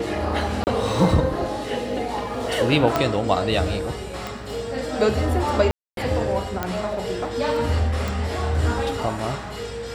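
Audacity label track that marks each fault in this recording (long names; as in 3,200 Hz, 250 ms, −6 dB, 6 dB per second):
0.640000	0.670000	drop-out 29 ms
2.960000	2.960000	click −6 dBFS
4.270000	4.270000	click
5.710000	5.970000	drop-out 262 ms
6.630000	6.630000	click −10 dBFS
8.080000	8.080000	click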